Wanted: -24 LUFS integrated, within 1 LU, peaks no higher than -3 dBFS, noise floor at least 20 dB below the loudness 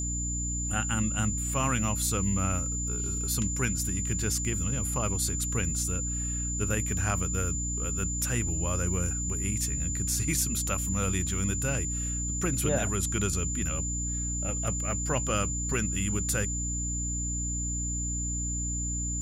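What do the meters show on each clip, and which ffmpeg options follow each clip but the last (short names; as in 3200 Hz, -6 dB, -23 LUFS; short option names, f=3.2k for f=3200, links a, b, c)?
hum 60 Hz; harmonics up to 300 Hz; hum level -31 dBFS; steady tone 7100 Hz; tone level -32 dBFS; loudness -28.5 LUFS; peak -14.5 dBFS; loudness target -24.0 LUFS
-> -af "bandreject=f=60:t=h:w=6,bandreject=f=120:t=h:w=6,bandreject=f=180:t=h:w=6,bandreject=f=240:t=h:w=6,bandreject=f=300:t=h:w=6"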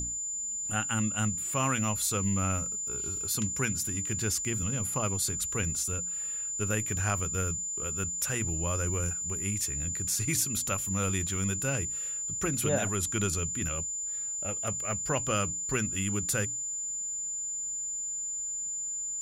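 hum none; steady tone 7100 Hz; tone level -32 dBFS
-> -af "bandreject=f=7.1k:w=30"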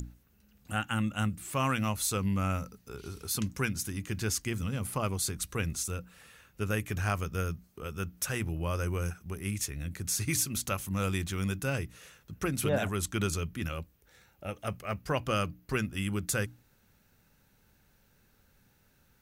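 steady tone none; loudness -33.0 LUFS; peak -17.0 dBFS; loudness target -24.0 LUFS
-> -af "volume=9dB"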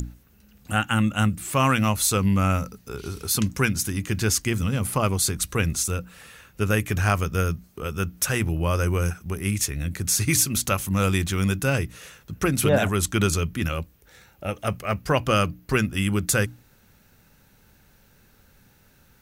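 loudness -24.0 LUFS; peak -8.0 dBFS; noise floor -58 dBFS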